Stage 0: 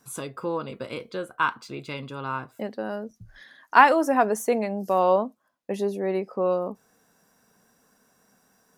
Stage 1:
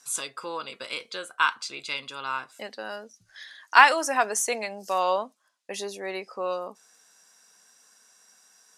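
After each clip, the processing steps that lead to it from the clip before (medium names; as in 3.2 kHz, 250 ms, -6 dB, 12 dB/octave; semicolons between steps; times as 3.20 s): frequency weighting ITU-R 468; trim -1 dB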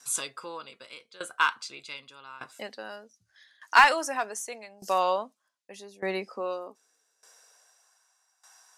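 high-pass sweep 69 Hz -> 810 Hz, 4.86–8.03 s; in parallel at -9 dB: wavefolder -13 dBFS; on the sum: sawtooth tremolo in dB decaying 0.83 Hz, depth 19 dB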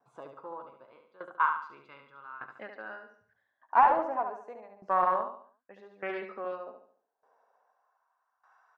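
LFO low-pass saw up 0.3 Hz 720–1900 Hz; on a send: feedback delay 71 ms, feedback 40%, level -6.5 dB; on the sum: loudspeaker Doppler distortion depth 0.15 ms; trim -6.5 dB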